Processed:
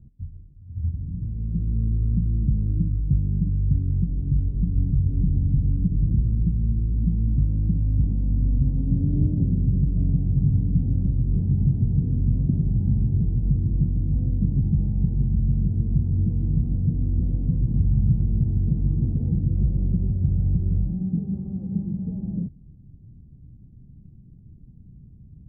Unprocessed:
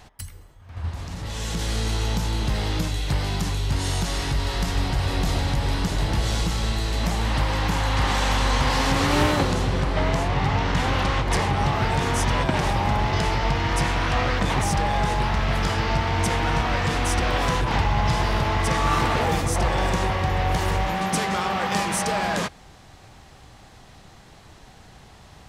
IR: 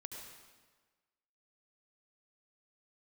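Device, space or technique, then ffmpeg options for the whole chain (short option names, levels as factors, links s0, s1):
the neighbour's flat through the wall: -af "lowpass=f=240:w=0.5412,lowpass=f=240:w=1.3066,equalizer=f=140:t=o:w=0.93:g=4,volume=1.26"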